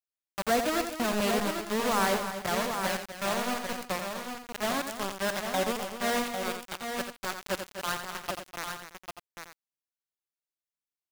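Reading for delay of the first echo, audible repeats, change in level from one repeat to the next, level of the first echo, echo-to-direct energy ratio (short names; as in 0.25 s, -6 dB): 87 ms, 5, no steady repeat, -8.0 dB, -3.0 dB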